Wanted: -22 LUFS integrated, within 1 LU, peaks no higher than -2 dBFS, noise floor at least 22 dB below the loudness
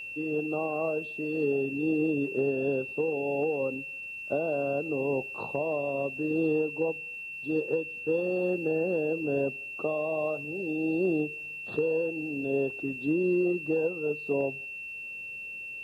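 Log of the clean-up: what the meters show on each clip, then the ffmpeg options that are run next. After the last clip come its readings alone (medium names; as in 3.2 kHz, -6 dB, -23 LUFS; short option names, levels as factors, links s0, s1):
steady tone 2.7 kHz; tone level -37 dBFS; loudness -30.0 LUFS; peak level -17.0 dBFS; loudness target -22.0 LUFS
-> -af "bandreject=f=2700:w=30"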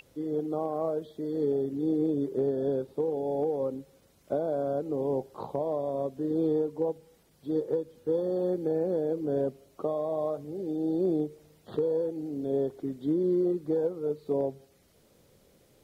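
steady tone not found; loudness -30.5 LUFS; peak level -18.0 dBFS; loudness target -22.0 LUFS
-> -af "volume=2.66"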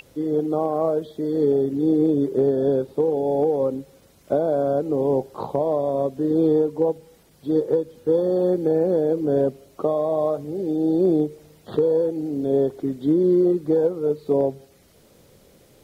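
loudness -22.0 LUFS; peak level -9.5 dBFS; noise floor -55 dBFS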